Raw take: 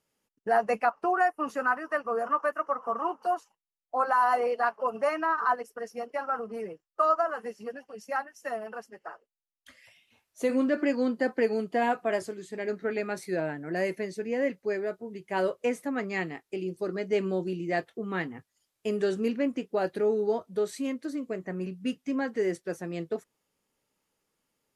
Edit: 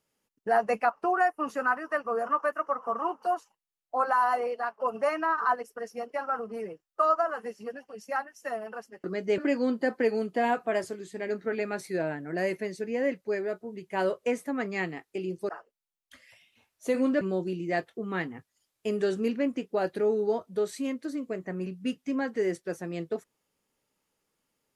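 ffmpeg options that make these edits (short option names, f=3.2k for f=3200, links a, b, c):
-filter_complex "[0:a]asplit=6[a][b][c][d][e][f];[a]atrim=end=4.8,asetpts=PTS-STARTPTS,afade=t=out:st=4.09:d=0.71:silence=0.421697[g];[b]atrim=start=4.8:end=9.042,asetpts=PTS-STARTPTS,afade=t=in:d=0.004:c=hsin:silence=0.421697[h];[c]atrim=start=16.868:end=17.212[i];[d]atrim=start=10.758:end=16.872[j];[e]atrim=start=9.038:end=10.762[k];[f]atrim=start=17.208[l];[g][h]concat=n=2:v=0:a=1[m];[m][i]acrossfade=d=0.004:c1=hsin:c2=hsin[n];[n][j]acrossfade=d=0.004:c1=hsin:c2=hsin[o];[o][k]acrossfade=d=0.004:c1=hsin:c2=hsin[p];[p][l]acrossfade=d=0.004:c1=hsin:c2=hsin"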